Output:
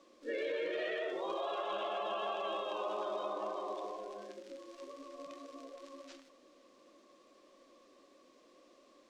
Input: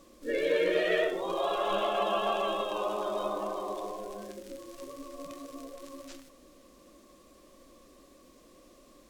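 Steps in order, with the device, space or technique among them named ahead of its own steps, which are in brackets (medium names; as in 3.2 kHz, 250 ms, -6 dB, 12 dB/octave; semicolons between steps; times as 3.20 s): DJ mixer with the lows and highs turned down (three-band isolator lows -23 dB, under 250 Hz, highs -21 dB, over 6.6 kHz; peak limiter -25 dBFS, peak gain reduction 9 dB); 2.95–3.68 s: low-pass 12 kHz; trim -4 dB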